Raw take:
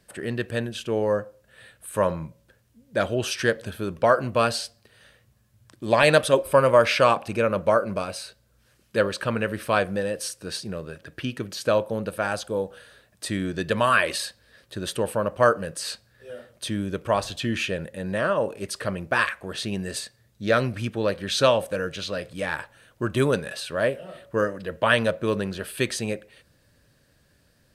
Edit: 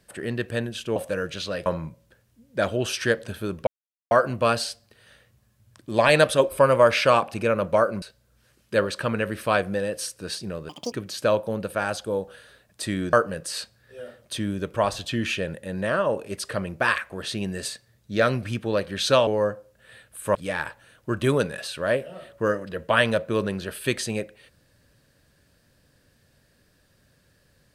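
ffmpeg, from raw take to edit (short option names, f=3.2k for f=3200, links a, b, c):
-filter_complex "[0:a]asplit=10[a][b][c][d][e][f][g][h][i][j];[a]atrim=end=0.962[k];[b]atrim=start=21.578:end=22.282[l];[c]atrim=start=2.038:end=4.05,asetpts=PTS-STARTPTS,afade=t=out:st=2.008:d=0.004:c=hsin,apad=pad_dur=0.44[m];[d]atrim=start=4.05:end=7.962,asetpts=PTS-STARTPTS,afade=t=in:d=0.004:c=hsin[n];[e]atrim=start=8.238:end=10.914[o];[f]atrim=start=10.91:end=11.35,asetpts=PTS-STARTPTS,asetrate=84231,aresample=44100,atrim=end_sample=10159,asetpts=PTS-STARTPTS[p];[g]atrim=start=11.346:end=13.562[q];[h]atrim=start=15.438:end=21.582[r];[i]atrim=start=0.958:end=2.042[s];[j]atrim=start=22.278[t];[k][l]acrossfade=d=0.004:c1=hsin:c2=hsin[u];[m][n]concat=n=2:v=0:a=1[v];[u][v]acrossfade=d=0.004:c1=hsin:c2=hsin[w];[w][o]acrossfade=d=0.004:c1=hsin:c2=hsin[x];[x][p]acrossfade=d=0.004:c1=hsin:c2=hsin[y];[y][q]acrossfade=d=0.004:c1=hsin:c2=hsin[z];[z][r]acrossfade=d=0.004:c1=hsin:c2=hsin[aa];[aa][s]acrossfade=d=0.004:c1=hsin:c2=hsin[ab];[ab][t]acrossfade=d=0.004:c1=hsin:c2=hsin"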